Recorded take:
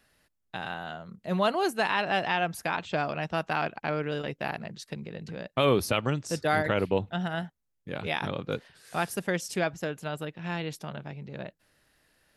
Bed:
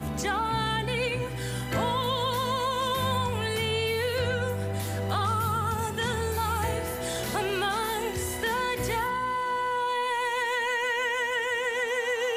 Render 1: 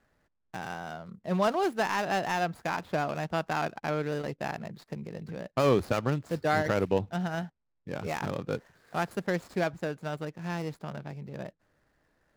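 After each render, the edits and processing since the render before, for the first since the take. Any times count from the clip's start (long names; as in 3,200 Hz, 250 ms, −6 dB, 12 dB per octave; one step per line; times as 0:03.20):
running median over 15 samples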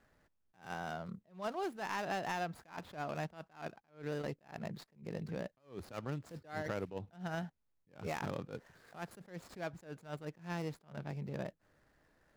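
downward compressor 5 to 1, threshold −35 dBFS, peak gain reduction 14.5 dB
level that may rise only so fast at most 180 dB per second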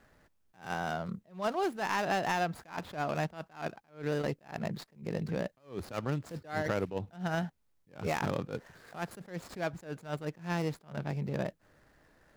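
level +7 dB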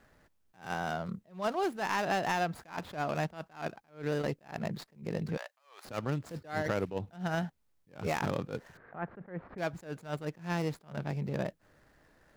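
0:05.37–0:05.85: high-pass filter 790 Hz 24 dB per octave
0:08.77–0:09.58: low-pass filter 1,900 Hz 24 dB per octave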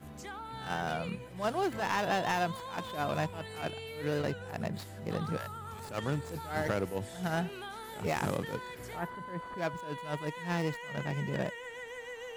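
mix in bed −15.5 dB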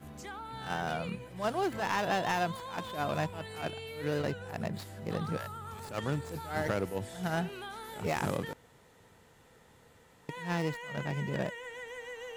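0:08.53–0:10.29: fill with room tone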